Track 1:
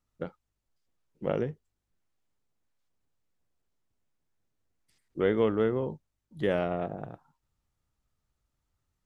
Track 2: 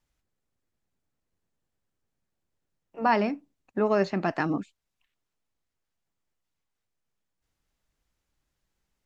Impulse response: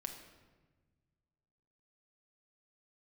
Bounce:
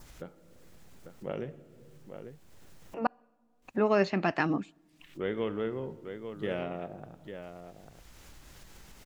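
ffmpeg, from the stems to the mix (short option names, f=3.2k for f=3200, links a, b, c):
-filter_complex "[0:a]volume=-10.5dB,asplit=4[a][b][c][d];[b]volume=-3dB[e];[c]volume=-5.5dB[f];[1:a]acompressor=mode=upward:threshold=-32dB:ratio=2.5,volume=-2dB,asplit=3[g][h][i];[g]atrim=end=3.07,asetpts=PTS-STARTPTS,afade=t=out:st=3.066:d=0.004:c=hsin[j];[h]atrim=start=3.07:end=3.62,asetpts=PTS-STARTPTS,volume=0[k];[i]atrim=start=3.62,asetpts=PTS-STARTPTS,afade=t=in:d=0.004:c=hsin[l];[j][k][l]concat=n=3:v=0:a=1,asplit=2[m][n];[n]volume=-23dB[o];[d]apad=whole_len=399205[p];[m][p]sidechaincompress=threshold=-55dB:ratio=4:attack=31:release=1140[q];[2:a]atrim=start_sample=2205[r];[e][o]amix=inputs=2:normalize=0[s];[s][r]afir=irnorm=-1:irlink=0[t];[f]aecho=0:1:846:1[u];[a][q][t][u]amix=inputs=4:normalize=0,acompressor=mode=upward:threshold=-45dB:ratio=2.5,adynamicequalizer=threshold=0.00224:dfrequency=2700:dqfactor=1.4:tfrequency=2700:tqfactor=1.4:attack=5:release=100:ratio=0.375:range=3:mode=boostabove:tftype=bell"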